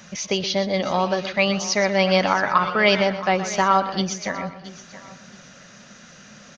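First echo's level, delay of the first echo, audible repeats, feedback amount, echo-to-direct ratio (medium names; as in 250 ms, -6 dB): -12.0 dB, 123 ms, 5, no regular repeats, -10.5 dB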